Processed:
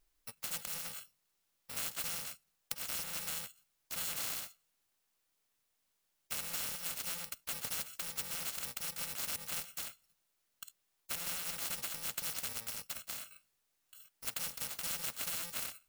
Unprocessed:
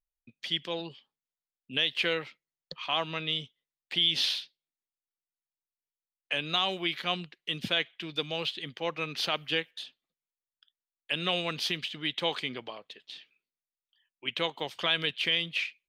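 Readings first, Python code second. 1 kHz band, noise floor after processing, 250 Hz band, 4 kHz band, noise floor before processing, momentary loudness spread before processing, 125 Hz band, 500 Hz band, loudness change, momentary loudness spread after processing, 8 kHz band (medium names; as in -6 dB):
-12.5 dB, -80 dBFS, -17.0 dB, -15.0 dB, under -85 dBFS, 17 LU, -13.5 dB, -19.0 dB, -8.0 dB, 10 LU, +11.5 dB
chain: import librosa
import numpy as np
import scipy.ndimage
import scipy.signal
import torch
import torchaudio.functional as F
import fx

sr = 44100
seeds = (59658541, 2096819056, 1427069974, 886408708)

y = fx.bit_reversed(x, sr, seeds[0], block=128)
y = fx.spectral_comp(y, sr, ratio=4.0)
y = F.gain(torch.from_numpy(y), -4.5).numpy()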